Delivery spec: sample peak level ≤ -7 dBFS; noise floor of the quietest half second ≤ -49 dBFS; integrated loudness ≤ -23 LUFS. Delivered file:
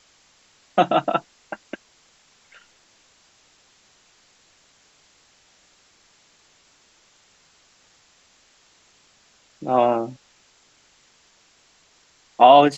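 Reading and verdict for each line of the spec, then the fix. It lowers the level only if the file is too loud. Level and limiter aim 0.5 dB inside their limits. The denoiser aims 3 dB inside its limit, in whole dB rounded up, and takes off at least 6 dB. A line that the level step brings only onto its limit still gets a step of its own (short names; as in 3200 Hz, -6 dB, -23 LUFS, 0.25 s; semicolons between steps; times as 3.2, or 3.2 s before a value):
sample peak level -1.5 dBFS: fail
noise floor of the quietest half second -58 dBFS: OK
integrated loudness -19.5 LUFS: fail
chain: gain -4 dB; limiter -7.5 dBFS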